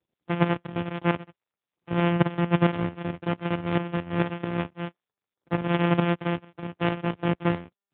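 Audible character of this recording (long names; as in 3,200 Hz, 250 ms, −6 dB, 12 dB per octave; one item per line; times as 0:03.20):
a buzz of ramps at a fixed pitch in blocks of 256 samples
tremolo saw up 4.5 Hz, depth 65%
AMR narrowband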